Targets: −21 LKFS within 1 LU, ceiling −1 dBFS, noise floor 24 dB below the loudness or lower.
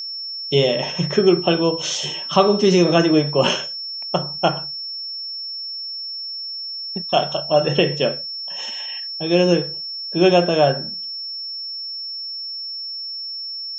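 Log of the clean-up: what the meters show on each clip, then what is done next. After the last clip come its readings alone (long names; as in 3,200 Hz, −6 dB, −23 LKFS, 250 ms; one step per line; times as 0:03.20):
interfering tone 5,400 Hz; level of the tone −27 dBFS; integrated loudness −20.5 LKFS; sample peak −1.5 dBFS; target loudness −21.0 LKFS
→ notch filter 5,400 Hz, Q 30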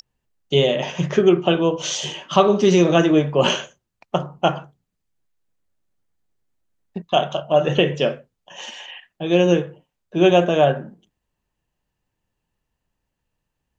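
interfering tone none found; integrated loudness −19.0 LKFS; sample peak −1.5 dBFS; target loudness −21.0 LKFS
→ level −2 dB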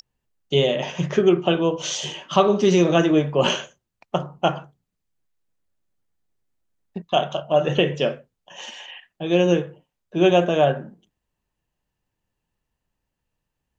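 integrated loudness −21.0 LKFS; sample peak −3.5 dBFS; background noise floor −81 dBFS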